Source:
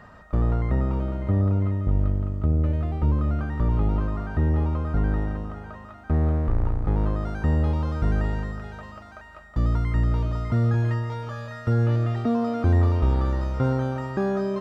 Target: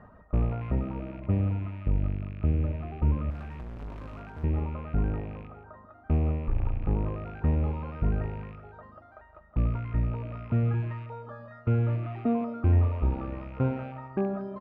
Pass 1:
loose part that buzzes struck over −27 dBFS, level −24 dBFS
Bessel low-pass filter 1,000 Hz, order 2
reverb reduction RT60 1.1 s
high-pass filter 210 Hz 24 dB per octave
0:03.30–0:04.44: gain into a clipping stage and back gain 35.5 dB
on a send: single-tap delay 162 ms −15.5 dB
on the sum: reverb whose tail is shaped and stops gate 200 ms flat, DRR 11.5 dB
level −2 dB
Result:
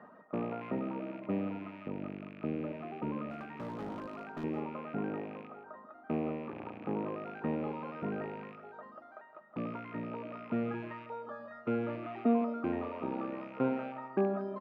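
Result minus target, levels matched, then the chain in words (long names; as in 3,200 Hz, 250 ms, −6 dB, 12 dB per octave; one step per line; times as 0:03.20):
250 Hz band +5.5 dB
loose part that buzzes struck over −27 dBFS, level −24 dBFS
Bessel low-pass filter 1,000 Hz, order 2
reverb reduction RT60 1.1 s
0:03.30–0:04.44: gain into a clipping stage and back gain 35.5 dB
on a send: single-tap delay 162 ms −15.5 dB
on the sum: reverb whose tail is shaped and stops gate 200 ms flat, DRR 11.5 dB
level −2 dB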